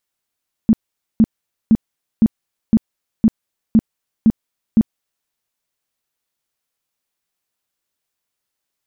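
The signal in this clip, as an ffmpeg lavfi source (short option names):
-f lavfi -i "aevalsrc='0.473*sin(2*PI*222*mod(t,0.51))*lt(mod(t,0.51),9/222)':d=4.59:s=44100"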